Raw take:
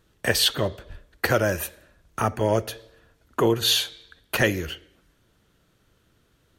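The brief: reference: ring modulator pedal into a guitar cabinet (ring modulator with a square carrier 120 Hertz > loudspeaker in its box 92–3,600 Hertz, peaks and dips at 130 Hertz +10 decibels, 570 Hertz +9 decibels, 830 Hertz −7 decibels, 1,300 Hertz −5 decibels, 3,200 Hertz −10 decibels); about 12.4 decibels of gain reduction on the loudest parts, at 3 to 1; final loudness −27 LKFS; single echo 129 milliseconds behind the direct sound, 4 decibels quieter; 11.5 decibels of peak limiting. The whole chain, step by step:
downward compressor 3 to 1, threshold −33 dBFS
brickwall limiter −25 dBFS
single-tap delay 129 ms −4 dB
ring modulator with a square carrier 120 Hz
loudspeaker in its box 92–3,600 Hz, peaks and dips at 130 Hz +10 dB, 570 Hz +9 dB, 830 Hz −7 dB, 1,300 Hz −5 dB, 3,200 Hz −10 dB
level +11 dB

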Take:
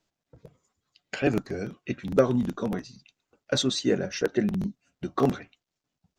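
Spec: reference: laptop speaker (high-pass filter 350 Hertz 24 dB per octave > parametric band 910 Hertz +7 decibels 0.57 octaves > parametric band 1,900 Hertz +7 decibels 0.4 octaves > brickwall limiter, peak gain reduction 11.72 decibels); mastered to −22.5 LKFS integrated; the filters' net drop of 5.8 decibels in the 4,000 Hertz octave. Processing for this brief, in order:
high-pass filter 350 Hz 24 dB per octave
parametric band 910 Hz +7 dB 0.57 octaves
parametric band 1,900 Hz +7 dB 0.4 octaves
parametric band 4,000 Hz −7 dB
level +11 dB
brickwall limiter −7.5 dBFS

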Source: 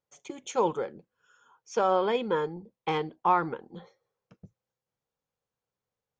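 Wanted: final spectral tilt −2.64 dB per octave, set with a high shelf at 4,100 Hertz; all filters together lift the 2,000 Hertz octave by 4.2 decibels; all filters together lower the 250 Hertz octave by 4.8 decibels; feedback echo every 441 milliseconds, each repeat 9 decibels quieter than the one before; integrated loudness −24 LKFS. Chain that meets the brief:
parametric band 250 Hz −8 dB
parametric band 2,000 Hz +7.5 dB
high-shelf EQ 4,100 Hz −8.5 dB
repeating echo 441 ms, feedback 35%, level −9 dB
level +5.5 dB

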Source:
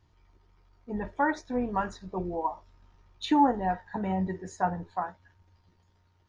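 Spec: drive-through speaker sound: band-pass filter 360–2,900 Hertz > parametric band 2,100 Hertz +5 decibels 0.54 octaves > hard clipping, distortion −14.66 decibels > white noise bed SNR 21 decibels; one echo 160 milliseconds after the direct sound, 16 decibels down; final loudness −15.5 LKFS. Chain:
band-pass filter 360–2,900 Hz
parametric band 2,100 Hz +5 dB 0.54 octaves
single-tap delay 160 ms −16 dB
hard clipping −20.5 dBFS
white noise bed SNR 21 dB
level +17 dB

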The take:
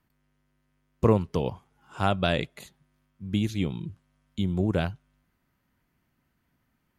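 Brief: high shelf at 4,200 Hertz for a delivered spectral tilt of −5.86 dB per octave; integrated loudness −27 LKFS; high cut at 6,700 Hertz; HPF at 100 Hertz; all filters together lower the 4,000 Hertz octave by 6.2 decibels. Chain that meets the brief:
high-pass filter 100 Hz
low-pass filter 6,700 Hz
parametric band 4,000 Hz −3.5 dB
high-shelf EQ 4,200 Hz −8.5 dB
level +1.5 dB

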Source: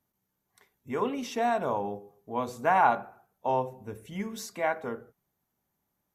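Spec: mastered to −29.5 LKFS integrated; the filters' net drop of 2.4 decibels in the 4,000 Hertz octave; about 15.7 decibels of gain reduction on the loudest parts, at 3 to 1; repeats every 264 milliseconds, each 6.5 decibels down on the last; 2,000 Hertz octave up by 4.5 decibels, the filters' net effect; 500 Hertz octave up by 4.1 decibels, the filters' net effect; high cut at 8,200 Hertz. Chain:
low-pass filter 8,200 Hz
parametric band 500 Hz +5 dB
parametric band 2,000 Hz +7 dB
parametric band 4,000 Hz −6 dB
downward compressor 3 to 1, threshold −37 dBFS
repeating echo 264 ms, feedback 47%, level −6.5 dB
level +8.5 dB

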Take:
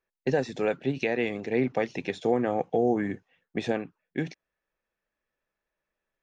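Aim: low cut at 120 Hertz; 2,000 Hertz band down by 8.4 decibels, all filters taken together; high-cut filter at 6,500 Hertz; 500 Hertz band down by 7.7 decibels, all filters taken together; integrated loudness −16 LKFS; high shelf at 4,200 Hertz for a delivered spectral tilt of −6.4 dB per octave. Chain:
high-pass filter 120 Hz
low-pass filter 6,500 Hz
parametric band 500 Hz −9 dB
parametric band 2,000 Hz −8 dB
high-shelf EQ 4,200 Hz −8 dB
level +18.5 dB

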